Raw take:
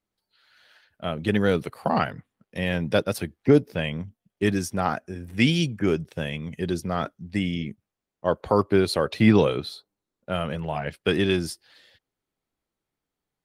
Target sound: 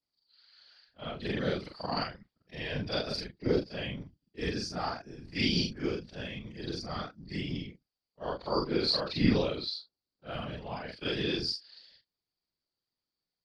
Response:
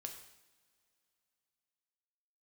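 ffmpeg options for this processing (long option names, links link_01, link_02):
-af "afftfilt=real='re':imag='-im':win_size=4096:overlap=0.75,lowpass=frequency=4700:width_type=q:width=12,afftfilt=real='hypot(re,im)*cos(2*PI*random(0))':imag='hypot(re,im)*sin(2*PI*random(1))':win_size=512:overlap=0.75"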